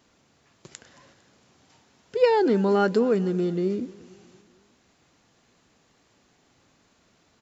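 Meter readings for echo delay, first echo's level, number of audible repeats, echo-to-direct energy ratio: 0.227 s, -22.0 dB, 3, -20.5 dB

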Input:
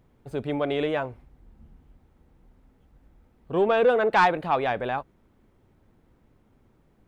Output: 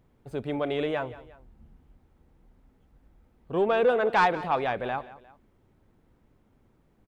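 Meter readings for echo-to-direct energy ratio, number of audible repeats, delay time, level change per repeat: -16.0 dB, 2, 0.177 s, -7.0 dB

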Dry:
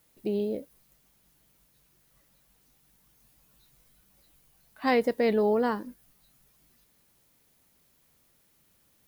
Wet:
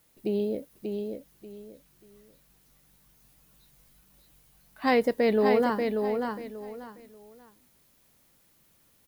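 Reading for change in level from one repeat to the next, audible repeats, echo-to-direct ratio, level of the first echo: -12.0 dB, 3, -4.5 dB, -5.0 dB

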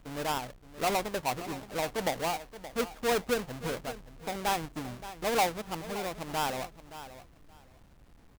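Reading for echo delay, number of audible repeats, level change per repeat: 0.573 s, 2, -14.5 dB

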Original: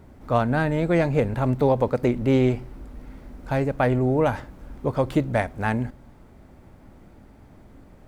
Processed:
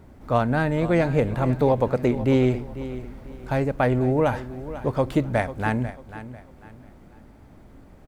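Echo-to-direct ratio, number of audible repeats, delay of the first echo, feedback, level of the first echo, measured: -13.5 dB, 3, 0.494 s, 31%, -14.0 dB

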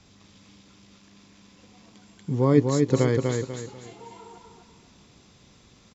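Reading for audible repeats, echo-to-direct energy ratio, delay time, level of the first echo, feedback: 4, -3.5 dB, 0.246 s, -4.0 dB, 34%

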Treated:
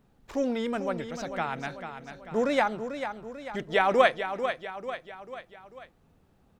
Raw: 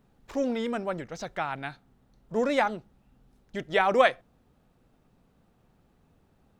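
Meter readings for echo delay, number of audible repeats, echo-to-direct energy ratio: 0.443 s, 4, -7.5 dB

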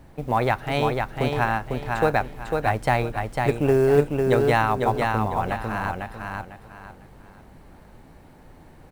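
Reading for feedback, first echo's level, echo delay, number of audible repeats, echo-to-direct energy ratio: 29%, -4.0 dB, 0.5 s, 3, -3.5 dB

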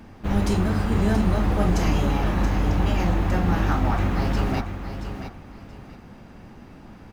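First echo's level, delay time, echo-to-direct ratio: -9.0 dB, 0.678 s, -8.5 dB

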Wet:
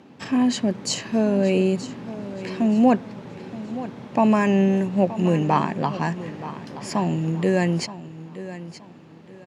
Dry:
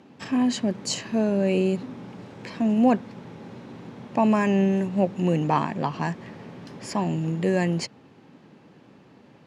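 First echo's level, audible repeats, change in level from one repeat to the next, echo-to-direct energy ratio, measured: -14.5 dB, 2, -10.5 dB, -14.0 dB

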